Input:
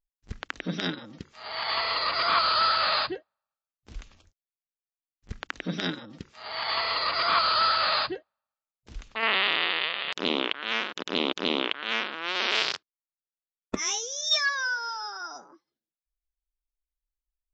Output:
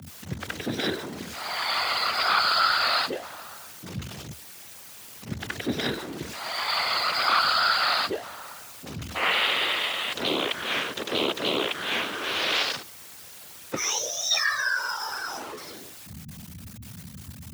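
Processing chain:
converter with a step at zero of −33 dBFS
random phases in short frames
frequency shifter +65 Hz

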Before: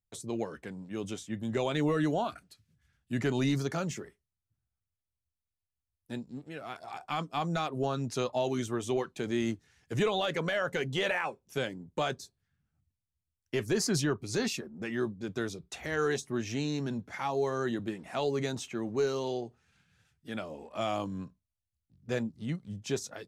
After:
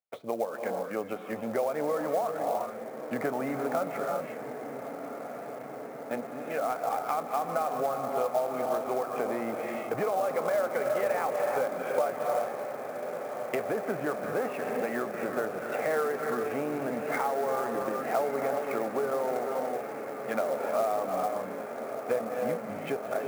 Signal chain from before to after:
flat-topped bell 800 Hz +12 dB
noise gate −46 dBFS, range −11 dB
reverb whose tail is shaped and stops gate 410 ms rising, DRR 7 dB
downward compressor 12 to 1, threshold −29 dBFS, peak gain reduction 15 dB
treble cut that deepens with the level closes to 1,500 Hz, closed at −31 dBFS
loudspeaker in its box 290–2,600 Hz, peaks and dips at 360 Hz −6 dB, 990 Hz −9 dB, 2,200 Hz +7 dB
on a send: feedback delay with all-pass diffusion 1,274 ms, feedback 79%, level −10 dB
on the sum: converter with an unsteady clock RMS 0.02 ms
level +6 dB

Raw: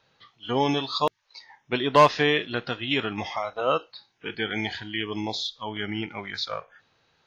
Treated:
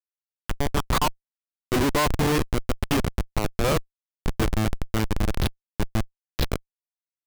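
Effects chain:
spring reverb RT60 2.7 s, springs 46 ms, chirp 35 ms, DRR 18.5 dB
high-pass filter sweep 2,200 Hz → 77 Hz, 0:00.39–0:02.66
comparator with hysteresis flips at −22.5 dBFS
level +6 dB

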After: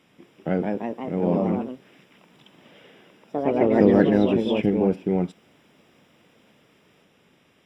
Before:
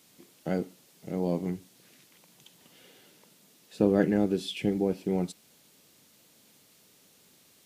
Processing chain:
delay with pitch and tempo change per echo 218 ms, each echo +2 semitones, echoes 3
Savitzky-Golay smoothing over 25 samples
level +5.5 dB

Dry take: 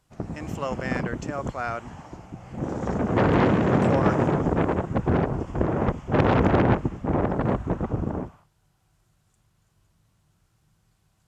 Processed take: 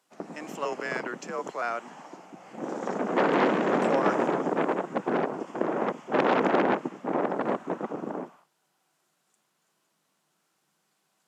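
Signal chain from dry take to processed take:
0:00.65–0:01.62: frequency shifter −100 Hz
Bessel high-pass filter 330 Hz, order 8

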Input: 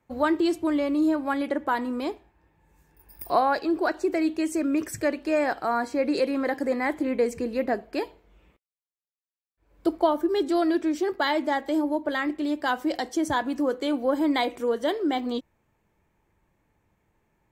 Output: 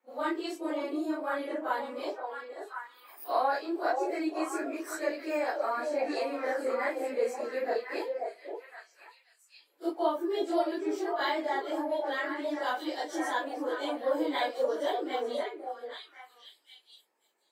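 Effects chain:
random phases in long frames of 100 ms
high-pass filter 340 Hz 24 dB per octave
echo through a band-pass that steps 529 ms, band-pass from 560 Hz, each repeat 1.4 octaves, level −1.5 dB
level −5.5 dB

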